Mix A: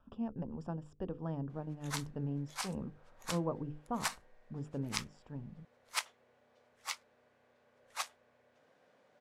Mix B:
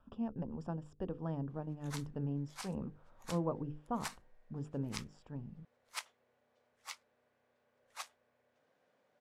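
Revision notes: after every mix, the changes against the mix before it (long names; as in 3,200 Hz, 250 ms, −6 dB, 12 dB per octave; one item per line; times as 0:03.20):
background −7.0 dB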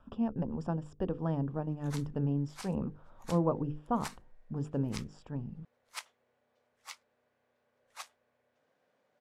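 speech +6.5 dB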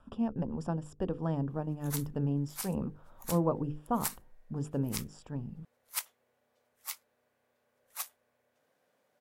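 master: remove high-frequency loss of the air 93 metres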